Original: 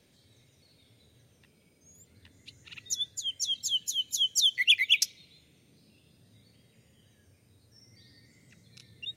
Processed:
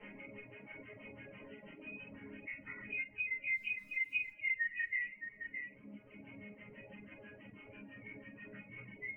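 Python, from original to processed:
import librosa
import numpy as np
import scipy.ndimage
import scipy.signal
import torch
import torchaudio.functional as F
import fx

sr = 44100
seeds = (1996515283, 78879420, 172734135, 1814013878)

p1 = fx.freq_compress(x, sr, knee_hz=1800.0, ratio=4.0)
p2 = fx.rider(p1, sr, range_db=10, speed_s=0.5)
p3 = p1 + (p2 * librosa.db_to_amplitude(-2.0))
p4 = fx.filter_lfo_lowpass(p3, sr, shape='sine', hz=6.1, low_hz=660.0, high_hz=1700.0, q=1.8)
p5 = fx.dmg_crackle(p4, sr, seeds[0], per_s=400.0, level_db=-48.0, at=(3.51, 4.3), fade=0.02)
p6 = fx.resonator_bank(p5, sr, root=56, chord='sus4', decay_s=0.26)
p7 = p6 + fx.echo_single(p6, sr, ms=615, db=-16.0, dry=0)
p8 = fx.room_shoebox(p7, sr, seeds[1], volume_m3=31.0, walls='mixed', distance_m=1.3)
p9 = fx.dereverb_blind(p8, sr, rt60_s=0.88)
p10 = fx.band_squash(p9, sr, depth_pct=70)
y = p10 * librosa.db_to_amplitude(2.0)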